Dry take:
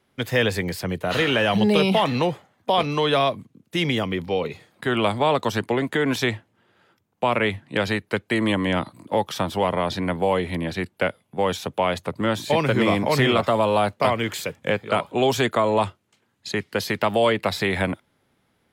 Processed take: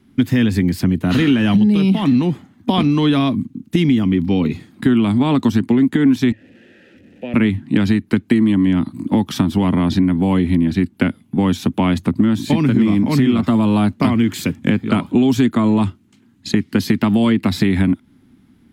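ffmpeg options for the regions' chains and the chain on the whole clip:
ffmpeg -i in.wav -filter_complex "[0:a]asettb=1/sr,asplit=3[link_01][link_02][link_03];[link_01]atrim=end=6.324[link_04];[link_02]atrim=start=6.32:end=7.34,asetpts=PTS-STARTPTS,afade=type=in:duration=0.004:curve=qsin,afade=type=out:start_time=1.016:duration=0.004:curve=qsin,aeval=exprs='val(0)+0.5*0.0168*sgn(val(0))':channel_layout=same,asplit=3[link_05][link_06][link_07];[link_05]bandpass=frequency=530:width_type=q:width=8,volume=0dB[link_08];[link_06]bandpass=frequency=1840:width_type=q:width=8,volume=-6dB[link_09];[link_07]bandpass=frequency=2480:width_type=q:width=8,volume=-9dB[link_10];[link_08][link_09][link_10]amix=inputs=3:normalize=0,equalizer=frequency=62:width_type=o:width=0.87:gain=14.5[link_11];[link_03]atrim=start=7.336[link_12];[link_04][link_11]acrossfade=duration=0.004:curve1=hsin:curve2=qsin[link_13];[link_13][link_12]acrossfade=duration=0.004:curve1=qsin:curve2=hsin,lowshelf=frequency=370:width_type=q:width=3:gain=12,acompressor=threshold=-15dB:ratio=6,equalizer=frequency=140:width=1.3:gain=-4,volume=5dB" out.wav

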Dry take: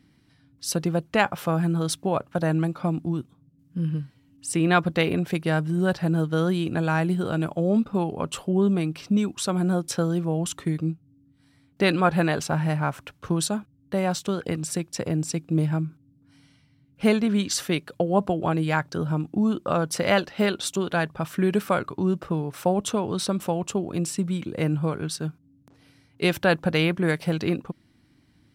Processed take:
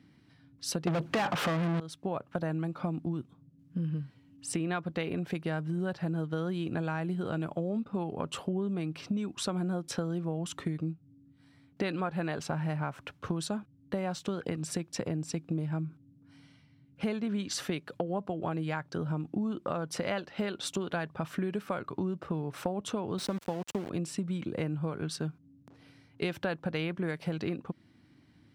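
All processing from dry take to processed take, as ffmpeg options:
ffmpeg -i in.wav -filter_complex "[0:a]asettb=1/sr,asplit=3[link_01][link_02][link_03];[link_01]atrim=end=0.874[link_04];[link_02]atrim=start=0.87:end=1.8,asetpts=PTS-STARTPTS,afade=type=in:duration=0.004:curve=qsin,afade=type=out:start_time=0.926:duration=0.004:curve=qsin,lowshelf=frequency=370:gain=10,asplit=2[link_05][link_06];[link_06]highpass=frequency=720:poles=1,volume=37dB,asoftclip=type=tanh:threshold=-3dB[link_07];[link_05][link_07]amix=inputs=2:normalize=0,lowpass=frequency=5100:poles=1,volume=-6dB[link_08];[link_03]atrim=start=1.796[link_09];[link_04][link_08]acrossfade=duration=0.004:curve1=hsin:curve2=qsin[link_10];[link_10][link_09]acrossfade=duration=0.004:curve1=qsin:curve2=hsin,asettb=1/sr,asplit=3[link_11][link_12][link_13];[link_11]atrim=end=23.184[link_14];[link_12]atrim=start=23.18:end=23.9,asetpts=PTS-STARTPTS,afade=type=in:duration=0.004:curve=qsin,afade=type=out:start_time=0.716:duration=0.004:curve=qsin,highpass=75,aeval=exprs='val(0)*gte(abs(val(0)),0.0266)':channel_layout=same[link_15];[link_13]atrim=start=23.896[link_16];[link_14][link_15]acrossfade=duration=0.004:curve1=hsin:curve2=qsin[link_17];[link_17][link_16]acrossfade=duration=0.004:curve1=qsin:curve2=hsin,highpass=80,highshelf=frequency=6600:gain=-11,acompressor=threshold=-30dB:ratio=6" out.wav

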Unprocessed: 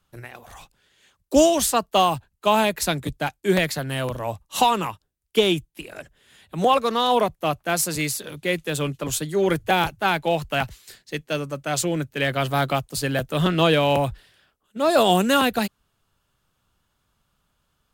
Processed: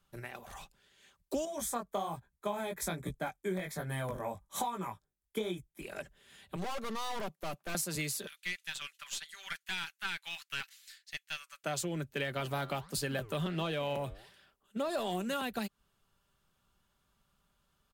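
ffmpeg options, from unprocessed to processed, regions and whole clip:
ffmpeg -i in.wav -filter_complex "[0:a]asettb=1/sr,asplit=3[link_01][link_02][link_03];[link_01]atrim=end=1.454[link_04];[link_02]atrim=start=1.45:end=5.82,asetpts=PTS-STARTPTS,afade=type=in:duration=0.004:curve=qsin,afade=type=out:start_time=4.366:duration=0.004:curve=qsin,equalizer=frequency=4500:width=2.6:gain=-11,flanger=delay=16:depth=5.8:speed=1.2,asuperstop=centerf=2800:order=4:qfactor=4.6[link_05];[link_03]atrim=start=5.816[link_06];[link_04][link_05]acrossfade=duration=0.004:curve1=hsin:curve2=qsin[link_07];[link_07][link_06]acrossfade=duration=0.004:curve1=qsin:curve2=hsin,asettb=1/sr,asplit=3[link_08][link_09][link_10];[link_08]atrim=end=6.564[link_11];[link_09]atrim=start=6.56:end=7.75,asetpts=PTS-STARTPTS,afade=type=in:duration=0.004:curve=qsin,afade=type=out:start_time=1.186:duration=0.004:curve=qsin,highpass=frequency=160:width=0.5412,highpass=frequency=160:width=1.3066,aeval=exprs='(tanh(35.5*val(0)+0.65)-tanh(0.65))/35.5':channel_layout=same[link_12];[link_10]atrim=start=7.746[link_13];[link_11][link_12]acrossfade=duration=0.004:curve1=hsin:curve2=qsin[link_14];[link_14][link_13]acrossfade=duration=0.004:curve1=qsin:curve2=hsin,asettb=1/sr,asplit=3[link_15][link_16][link_17];[link_15]atrim=end=8.274[link_18];[link_16]atrim=start=8.27:end=11.64,asetpts=PTS-STARTPTS,afade=type=in:duration=0.004:curve=qsin,afade=type=out:start_time=3.366:duration=0.004:curve=qsin,acrossover=split=6800[link_19][link_20];[link_20]acompressor=threshold=-49dB:ratio=4:attack=1:release=60[link_21];[link_19][link_21]amix=inputs=2:normalize=0,highpass=frequency=1500:width=0.5412,highpass=frequency=1500:width=1.3066,aeval=exprs='(tanh(11.2*val(0)+0.55)-tanh(0.55))/11.2':channel_layout=same[link_22];[link_17]atrim=start=11.636[link_23];[link_18][link_22]acrossfade=duration=0.004:curve1=hsin:curve2=qsin[link_24];[link_24][link_23]acrossfade=duration=0.004:curve1=qsin:curve2=hsin,asettb=1/sr,asplit=3[link_25][link_26][link_27];[link_25]atrim=end=12.314[link_28];[link_26]atrim=start=12.31:end=15.34,asetpts=PTS-STARTPTS,afade=type=in:duration=0.004:curve=qsin,afade=type=out:start_time=3.026:duration=0.004:curve=qsin,acontrast=47,flanger=delay=2.7:depth=8.2:regen=88:speed=1.4:shape=sinusoidal[link_29];[link_27]atrim=start=15.336[link_30];[link_28][link_29]acrossfade=duration=0.004:curve1=hsin:curve2=qsin[link_31];[link_31][link_30]acrossfade=duration=0.004:curve1=qsin:curve2=hsin,aecho=1:1:5.1:0.31,acompressor=threshold=-27dB:ratio=10,volume=-5dB" out.wav

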